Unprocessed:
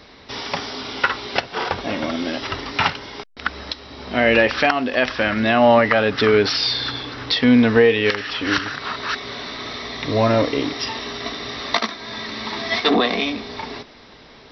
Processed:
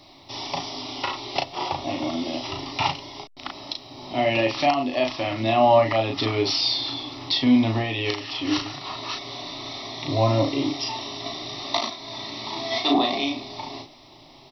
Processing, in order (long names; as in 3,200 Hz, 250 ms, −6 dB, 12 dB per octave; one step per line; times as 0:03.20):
bit-depth reduction 12 bits, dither none
phaser with its sweep stopped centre 310 Hz, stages 8
double-tracking delay 36 ms −4 dB
level −2 dB